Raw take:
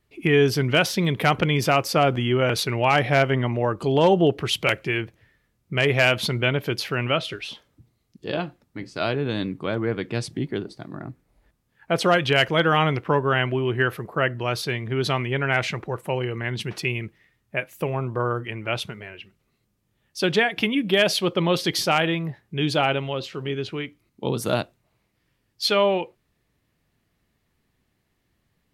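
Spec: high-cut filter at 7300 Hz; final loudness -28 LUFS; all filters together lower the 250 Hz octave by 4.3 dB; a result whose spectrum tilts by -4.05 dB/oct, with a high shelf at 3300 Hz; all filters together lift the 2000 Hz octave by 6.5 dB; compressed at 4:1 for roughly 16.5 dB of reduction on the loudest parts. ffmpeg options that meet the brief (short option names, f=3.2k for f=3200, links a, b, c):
-af "lowpass=7.3k,equalizer=f=250:t=o:g=-7,equalizer=f=2k:t=o:g=7,highshelf=f=3.3k:g=4.5,acompressor=threshold=-31dB:ratio=4,volume=5dB"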